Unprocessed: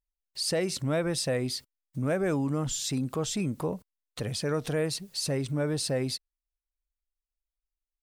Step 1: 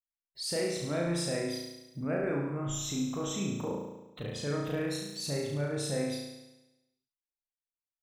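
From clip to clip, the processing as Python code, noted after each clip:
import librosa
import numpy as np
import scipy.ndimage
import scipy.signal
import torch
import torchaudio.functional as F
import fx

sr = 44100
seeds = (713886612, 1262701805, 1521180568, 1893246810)

y = fx.noise_reduce_blind(x, sr, reduce_db=20)
y = fx.room_flutter(y, sr, wall_m=6.0, rt60_s=1.0)
y = y * librosa.db_to_amplitude(-7.0)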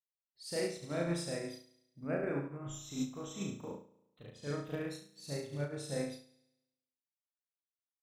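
y = fx.upward_expand(x, sr, threshold_db=-42.0, expansion=2.5)
y = y * librosa.db_to_amplitude(-1.5)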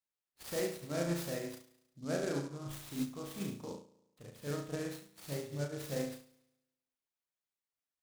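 y = fx.noise_mod_delay(x, sr, seeds[0], noise_hz=5200.0, depth_ms=0.05)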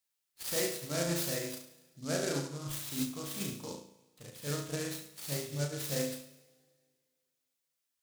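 y = fx.high_shelf(x, sr, hz=2100.0, db=10.0)
y = fx.rev_double_slope(y, sr, seeds[1], early_s=0.59, late_s=2.2, knee_db=-18, drr_db=9.5)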